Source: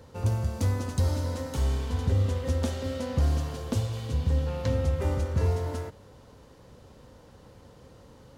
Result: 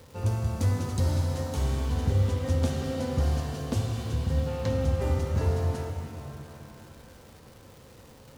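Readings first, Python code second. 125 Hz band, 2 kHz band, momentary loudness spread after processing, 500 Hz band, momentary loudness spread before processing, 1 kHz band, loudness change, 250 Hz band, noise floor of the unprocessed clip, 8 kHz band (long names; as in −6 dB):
+0.5 dB, +0.5 dB, 11 LU, +0.5 dB, 4 LU, +1.0 dB, 0.0 dB, +1.5 dB, −53 dBFS, +0.5 dB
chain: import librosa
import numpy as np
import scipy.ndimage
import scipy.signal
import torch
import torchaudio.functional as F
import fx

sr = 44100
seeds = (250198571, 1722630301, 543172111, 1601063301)

y = fx.dmg_crackle(x, sr, seeds[0], per_s=500.0, level_db=-44.0)
y = fx.rev_shimmer(y, sr, seeds[1], rt60_s=2.9, semitones=7, shimmer_db=-8, drr_db=5.0)
y = y * librosa.db_to_amplitude(-1.0)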